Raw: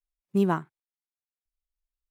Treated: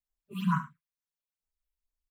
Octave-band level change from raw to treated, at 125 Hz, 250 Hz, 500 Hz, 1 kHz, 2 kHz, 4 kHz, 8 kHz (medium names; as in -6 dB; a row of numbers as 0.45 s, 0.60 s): -1.0 dB, -5.5 dB, under -25 dB, -2.0 dB, -1.0 dB, +0.5 dB, no reading